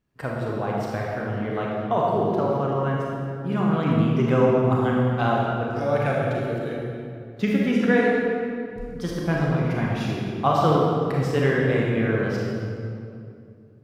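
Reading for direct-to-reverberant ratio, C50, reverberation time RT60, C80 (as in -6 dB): -3.5 dB, -2.0 dB, 2.6 s, 0.0 dB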